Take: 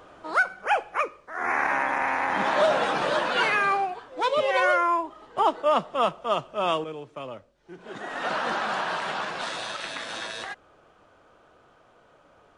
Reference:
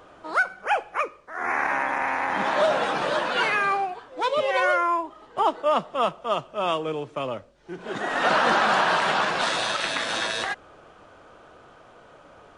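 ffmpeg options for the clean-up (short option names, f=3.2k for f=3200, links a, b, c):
-af "asetnsamples=n=441:p=0,asendcmd='6.84 volume volume 7.5dB',volume=0dB"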